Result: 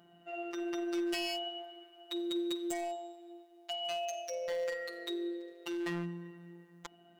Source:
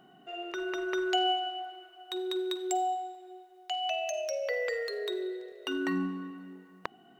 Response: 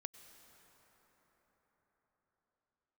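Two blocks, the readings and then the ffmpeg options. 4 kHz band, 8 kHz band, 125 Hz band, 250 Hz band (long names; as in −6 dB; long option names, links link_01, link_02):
−5.0 dB, −4.0 dB, can't be measured, −1.5 dB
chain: -af "aeval=exprs='0.0501*(abs(mod(val(0)/0.0501+3,4)-2)-1)':channel_layout=same,afftfilt=real='hypot(re,im)*cos(PI*b)':imag='0':win_size=1024:overlap=0.75"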